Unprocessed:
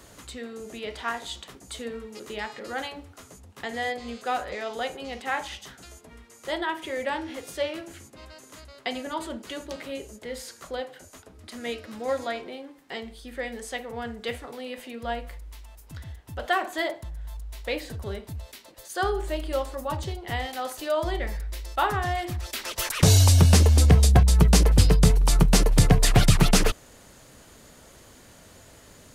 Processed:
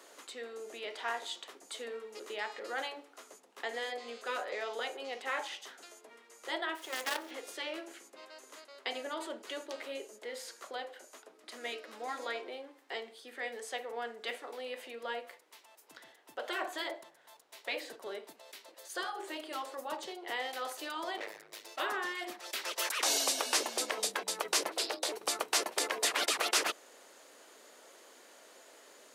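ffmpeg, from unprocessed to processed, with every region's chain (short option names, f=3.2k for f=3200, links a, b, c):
-filter_complex "[0:a]asettb=1/sr,asplit=3[a][b][c];[a]atrim=end=6.754[d];[b]atrim=start=6.75:end=7.31,asetpts=PTS-STARTPTS,afade=t=in:d=0.004:c=qsin,afade=t=out:st=0.556:d=0.004:c=qsin,aemphasis=mode=production:type=cd,bandreject=f=2.4k:w=5.7,acrusher=bits=5:dc=4:mix=0:aa=0.000001[e];[c]atrim=start=7.306[f];[d][e]acrossfade=d=0.004:c1=hsin:c2=qsin[g];[g][f]acrossfade=d=0.004:c1=qsin:c2=hsin,asettb=1/sr,asplit=3[h][i][j];[h]atrim=end=21.174[k];[i]atrim=start=21.17:end=21.8,asetpts=PTS-STARTPTS,afade=t=in:d=0.004:c=qsin,afade=t=out:st=0.626:d=0.004:c=qsin,lowshelf=f=120:g=5,aecho=1:1:6.5:0.9,atrim=end_sample=27783,asoftclip=type=hard:threshold=-30dB[l];[j]atrim=start=21.796[m];[k][l]acrossfade=d=0.004:c1=hsin:c2=qsin[n];[n][m]acrossfade=d=0.004:c1=qsin:c2=hsin,asettb=1/sr,asplit=3[o][p][q];[o]atrim=end=24.704[r];[p]atrim=start=24.7:end=25.12,asetpts=PTS-STARTPTS,afade=t=in:d=0.004:c=qsin,afade=t=out:st=0.416:d=0.004:c=qsin,equalizer=f=4k:w=2.3:g=5.5,aeval=exprs='val(0)*sin(2*PI*170*n/s)':c=same[s];[q]atrim=start=25.116[t];[r][s]acrossfade=d=0.004:c1=hsin:c2=qsin[u];[u][t]acrossfade=d=0.004:c1=qsin:c2=hsin,afftfilt=real='re*lt(hypot(re,im),0.251)':imag='im*lt(hypot(re,im),0.251)':win_size=1024:overlap=0.75,highpass=f=350:w=0.5412,highpass=f=350:w=1.3066,highshelf=f=7.5k:g=-5,volume=-3.5dB"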